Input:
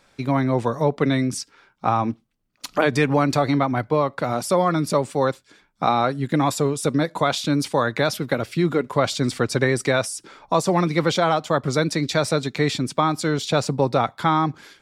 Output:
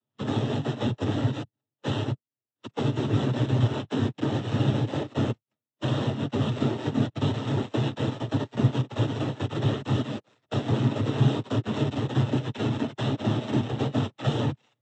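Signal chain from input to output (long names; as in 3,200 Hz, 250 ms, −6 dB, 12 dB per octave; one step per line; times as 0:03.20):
samples sorted by size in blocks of 256 samples
parametric band 3,200 Hz +11 dB 0.2 octaves
leveller curve on the samples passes 3
downward compressor, threshold −14 dBFS, peak gain reduction 6.5 dB
high-pass filter 150 Hz 24 dB per octave
phase-vocoder pitch shift with formants kept −5.5 semitones
cochlear-implant simulation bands 12
every bin expanded away from the loudest bin 1.5 to 1
level −5 dB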